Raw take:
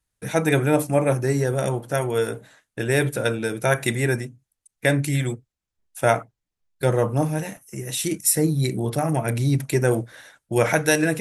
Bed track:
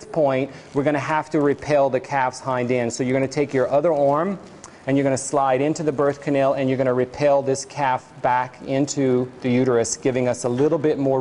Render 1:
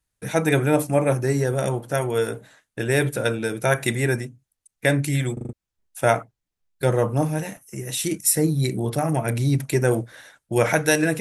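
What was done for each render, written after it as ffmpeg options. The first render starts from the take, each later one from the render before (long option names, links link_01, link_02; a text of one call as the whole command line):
ffmpeg -i in.wav -filter_complex "[0:a]asplit=6[link_01][link_02][link_03][link_04][link_05][link_06];[link_01]atrim=end=5.372[link_07];[link_02]atrim=start=5.328:end=5.372[link_08];[link_03]atrim=start=5.328:end=5.372[link_09];[link_04]atrim=start=5.328:end=5.372[link_10];[link_05]atrim=start=5.328:end=5.372[link_11];[link_06]atrim=start=5.528[link_12];[link_07][link_08]acrossfade=duration=0.004:curve1=hsin:curve2=hsin[link_13];[link_13][link_09]acrossfade=duration=0.004:curve1=hsin:curve2=hsin[link_14];[link_14][link_10]acrossfade=duration=0.004:curve1=hsin:curve2=hsin[link_15];[link_15][link_11]acrossfade=duration=0.004:curve1=hsin:curve2=hsin[link_16];[link_16][link_12]acrossfade=duration=0.004:curve1=hsin:curve2=hsin" out.wav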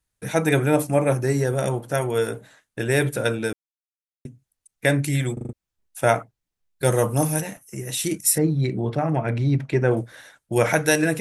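ffmpeg -i in.wav -filter_complex "[0:a]asplit=3[link_01][link_02][link_03];[link_01]afade=type=out:start_time=6.84:duration=0.02[link_04];[link_02]aemphasis=mode=production:type=75kf,afade=type=in:start_time=6.84:duration=0.02,afade=type=out:start_time=7.4:duration=0.02[link_05];[link_03]afade=type=in:start_time=7.4:duration=0.02[link_06];[link_04][link_05][link_06]amix=inputs=3:normalize=0,asettb=1/sr,asplit=3[link_07][link_08][link_09];[link_07]atrim=end=8.384[link_10];[link_08]atrim=start=8.38:end=9.97,asetpts=PTS-STARTPTS,afade=type=in:duration=0.004:curve=qsin,afade=type=out:start_time=1.586:duration=0.004:curve=qsin,lowpass=2900[link_11];[link_09]atrim=start=9.966[link_12];[link_10][link_11]acrossfade=duration=0.004:curve1=hsin:curve2=qsin[link_13];[link_13][link_12]acrossfade=duration=0.004:curve1=qsin:curve2=hsin,asplit=3[link_14][link_15][link_16];[link_14]atrim=end=3.53,asetpts=PTS-STARTPTS,afade=type=out:start_time=3.526:duration=0.004:curve=hsin[link_17];[link_15]atrim=start=3.53:end=4.25,asetpts=PTS-STARTPTS,volume=0[link_18];[link_16]atrim=start=4.25,asetpts=PTS-STARTPTS,afade=type=in:duration=0.004:curve=hsin[link_19];[link_17][link_18][link_19]concat=n=3:v=0:a=1" out.wav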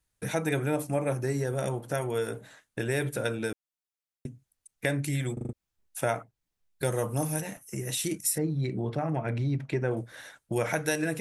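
ffmpeg -i in.wav -af "acompressor=threshold=-32dB:ratio=2" out.wav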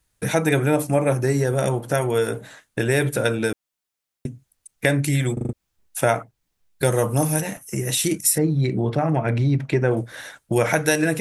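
ffmpeg -i in.wav -af "volume=9dB" out.wav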